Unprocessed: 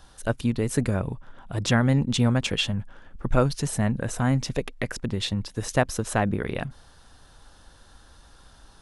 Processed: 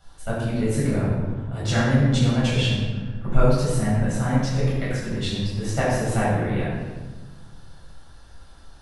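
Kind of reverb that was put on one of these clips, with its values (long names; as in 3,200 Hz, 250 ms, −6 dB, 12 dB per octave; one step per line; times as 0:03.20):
rectangular room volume 1,000 cubic metres, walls mixed, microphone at 7.1 metres
level −11 dB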